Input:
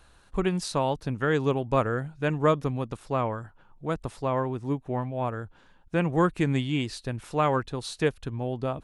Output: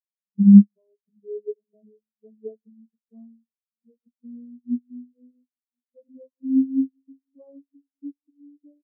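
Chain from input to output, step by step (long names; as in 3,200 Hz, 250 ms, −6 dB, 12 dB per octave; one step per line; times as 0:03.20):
vocoder with a gliding carrier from G3, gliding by +7 semitones
high-pass filter 130 Hz 6 dB per octave
parametric band 180 Hz +7 dB 1.6 octaves
convolution reverb, pre-delay 33 ms, DRR 12.5 dB
rotating-speaker cabinet horn 1.2 Hz
Chebyshev low-pass filter 1,300 Hz, order 4
in parallel at +1.5 dB: downward compressor, threshold −30 dBFS, peak gain reduction 15 dB
on the sum: low-shelf EQ 370 Hz −2 dB
slap from a distant wall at 180 metres, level −27 dB
upward compression, threshold −25 dBFS
every bin expanded away from the loudest bin 4 to 1
level +7.5 dB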